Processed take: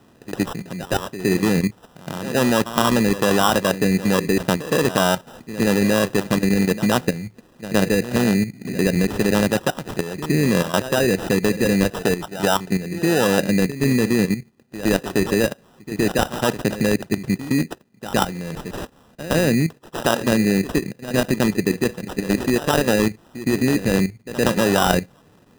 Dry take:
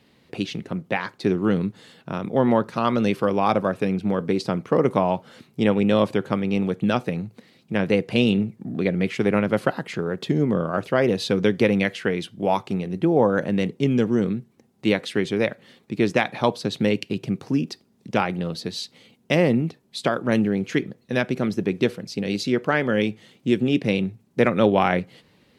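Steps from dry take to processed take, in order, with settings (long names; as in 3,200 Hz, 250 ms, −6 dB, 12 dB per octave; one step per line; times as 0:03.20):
output level in coarse steps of 12 dB
backwards echo 116 ms −13.5 dB
decimation without filtering 20×
level +7 dB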